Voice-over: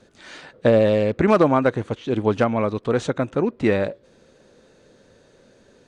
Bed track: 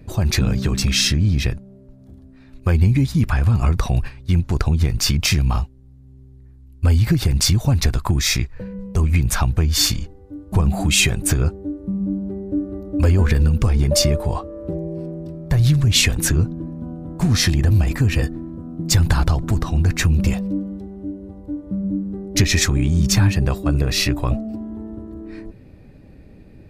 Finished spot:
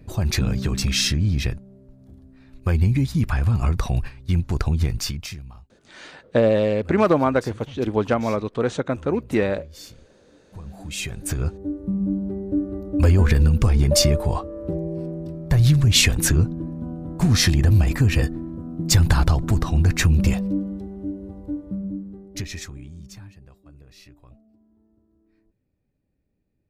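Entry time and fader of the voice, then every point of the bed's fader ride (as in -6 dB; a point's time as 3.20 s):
5.70 s, -1.5 dB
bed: 4.91 s -3.5 dB
5.56 s -25 dB
10.43 s -25 dB
11.71 s -0.5 dB
21.49 s -0.5 dB
23.41 s -30 dB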